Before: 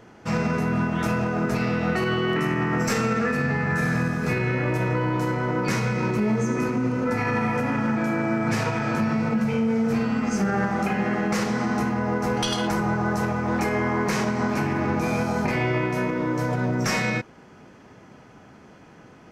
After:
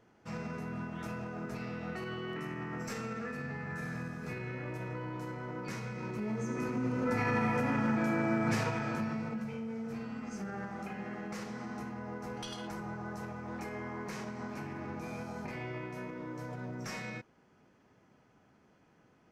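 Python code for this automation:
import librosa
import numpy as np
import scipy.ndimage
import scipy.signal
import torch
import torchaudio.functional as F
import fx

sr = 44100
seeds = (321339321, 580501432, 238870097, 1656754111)

y = fx.gain(x, sr, db=fx.line((5.96, -16.0), (7.18, -6.5), (8.51, -6.5), (9.59, -17.0)))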